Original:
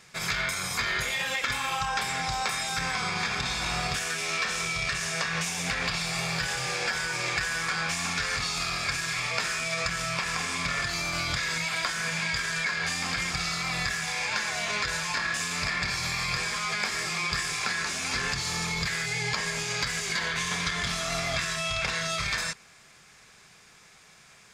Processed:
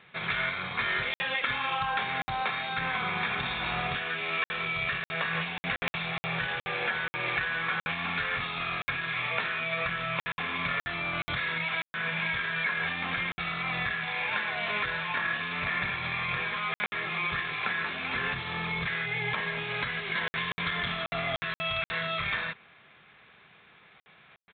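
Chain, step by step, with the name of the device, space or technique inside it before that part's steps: call with lost packets (high-pass 120 Hz 6 dB/octave; resampled via 8 kHz; lost packets of 60 ms random)

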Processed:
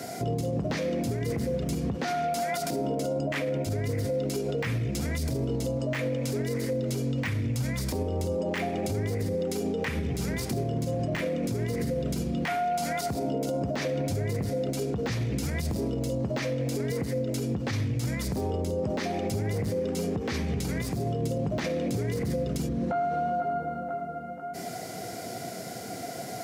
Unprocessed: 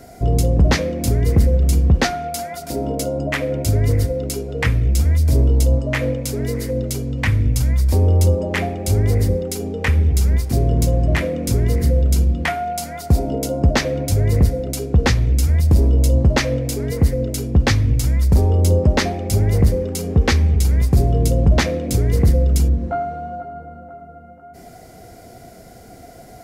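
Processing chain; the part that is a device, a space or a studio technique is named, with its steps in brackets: broadcast voice chain (high-pass 120 Hz 24 dB/octave; de-esser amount 70%; compression 3:1, threshold -28 dBFS, peak gain reduction 11.5 dB; peaking EQ 4.7 kHz +5 dB 2.7 oct; peak limiter -25.5 dBFS, peak gain reduction 11 dB); trim +4 dB

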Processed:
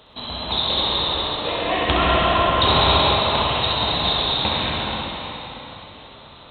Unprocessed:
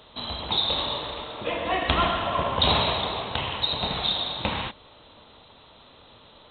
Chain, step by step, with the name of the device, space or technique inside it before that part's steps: tunnel (flutter echo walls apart 11.1 m, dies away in 0.64 s; reverberation RT60 4.0 s, pre-delay 97 ms, DRR -3 dB); trim +1 dB

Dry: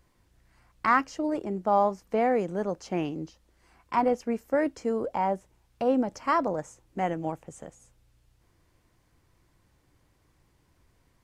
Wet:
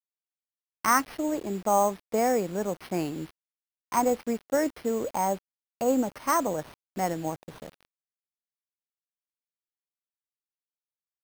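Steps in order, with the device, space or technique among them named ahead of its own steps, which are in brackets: early 8-bit sampler (sample-rate reducer 7.3 kHz, jitter 0%; bit crusher 8-bit)

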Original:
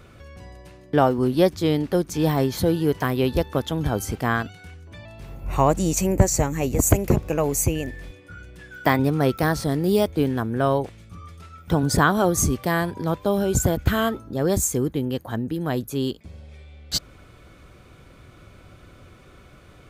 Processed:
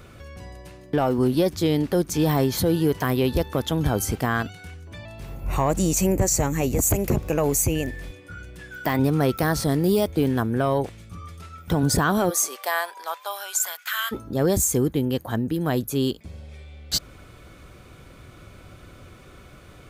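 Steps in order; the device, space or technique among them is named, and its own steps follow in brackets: 12.29–14.11 s: high-pass 490 Hz -> 1.4 kHz 24 dB/octave; treble shelf 7.6 kHz +5 dB; soft clipper into limiter (saturation -7.5 dBFS, distortion -21 dB; peak limiter -14.5 dBFS, peak gain reduction 6.5 dB); trim +2 dB

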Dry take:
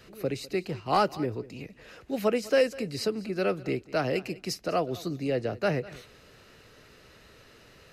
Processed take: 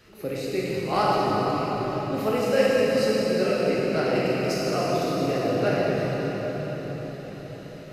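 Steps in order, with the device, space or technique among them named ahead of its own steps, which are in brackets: cathedral (reverberation RT60 5.6 s, pre-delay 15 ms, DRR -7 dB); trim -2.5 dB

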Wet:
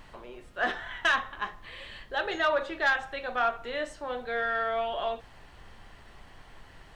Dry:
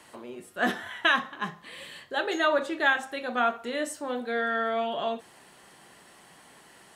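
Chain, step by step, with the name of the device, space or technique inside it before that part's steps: aircraft cabin announcement (band-pass 450–4100 Hz; saturation -15.5 dBFS, distortion -19 dB; brown noise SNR 18 dB)

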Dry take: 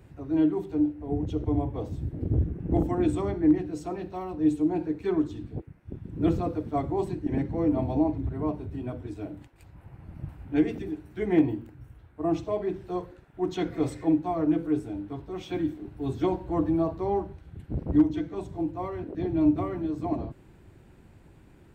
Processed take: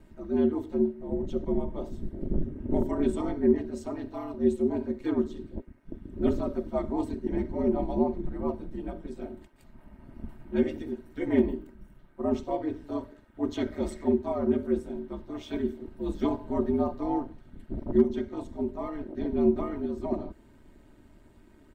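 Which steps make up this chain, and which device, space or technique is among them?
band-stop 2.5 kHz, Q 12; ring-modulated robot voice (ring modulator 74 Hz; comb 3.2 ms, depth 64%)

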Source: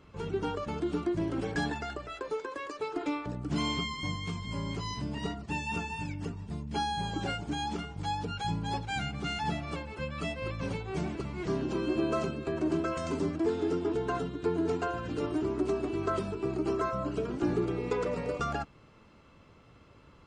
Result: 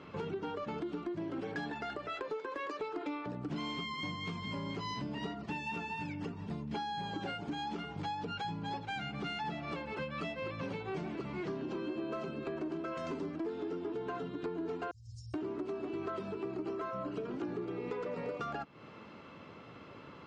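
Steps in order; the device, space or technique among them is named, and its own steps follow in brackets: 14.91–15.34 s: Chebyshev band-stop 110–5200 Hz, order 5; AM radio (band-pass 160–4100 Hz; compression 6:1, threshold -44 dBFS, peak gain reduction 18 dB; saturation -36 dBFS, distortion -24 dB); trim +8 dB

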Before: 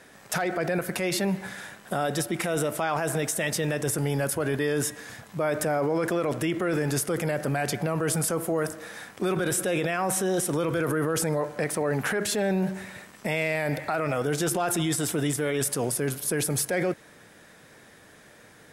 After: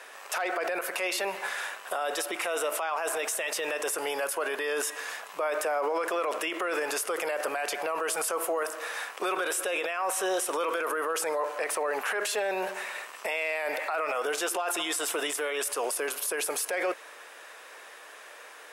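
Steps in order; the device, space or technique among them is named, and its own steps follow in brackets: laptop speaker (high-pass 450 Hz 24 dB/octave; peaking EQ 1.1 kHz +7 dB 0.59 oct; peaking EQ 2.7 kHz +7 dB 0.35 oct; peak limiter -25 dBFS, peak gain reduction 12.5 dB); trim +4 dB

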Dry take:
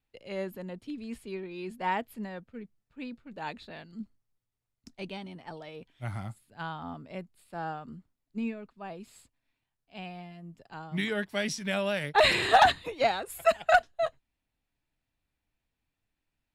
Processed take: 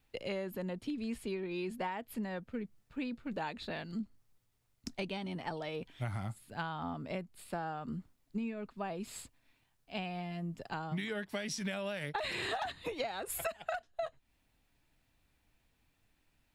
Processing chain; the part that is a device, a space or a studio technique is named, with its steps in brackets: serial compression, leveller first (compression 3:1, threshold -31 dBFS, peak gain reduction 12 dB; compression 6:1, threshold -45 dBFS, peak gain reduction 18 dB); trim +9.5 dB

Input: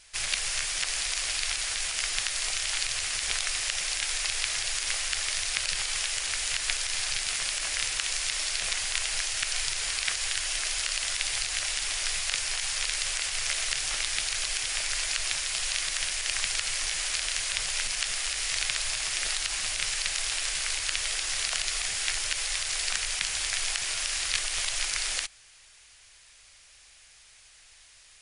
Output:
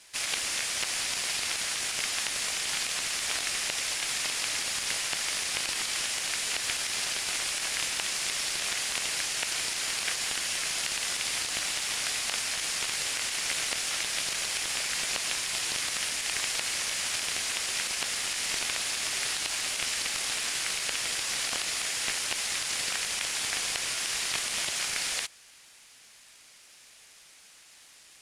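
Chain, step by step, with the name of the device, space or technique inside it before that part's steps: early wireless headset (high-pass 300 Hz 12 dB/octave; CVSD coder 64 kbps)

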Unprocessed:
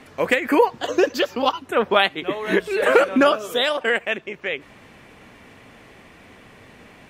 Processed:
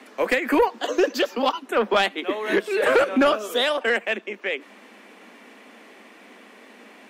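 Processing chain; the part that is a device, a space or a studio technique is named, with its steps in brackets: steep high-pass 200 Hz 96 dB/octave; saturation between pre-emphasis and de-emphasis (treble shelf 5.1 kHz +7.5 dB; saturation -11 dBFS, distortion -14 dB; treble shelf 5.1 kHz -7.5 dB)

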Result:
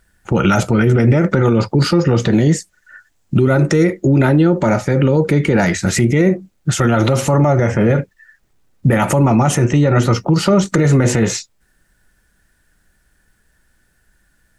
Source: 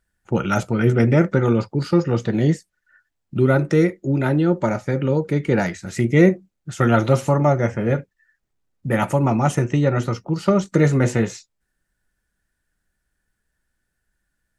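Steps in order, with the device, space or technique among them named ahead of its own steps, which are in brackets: 2.27–3.84 s: peaking EQ 7 kHz +5.5 dB 0.63 oct; loud club master (compression 3:1, threshold -18 dBFS, peak gain reduction 8 dB; hard clipper -9 dBFS, distortion -43 dB; loudness maximiser +19 dB); trim -3.5 dB

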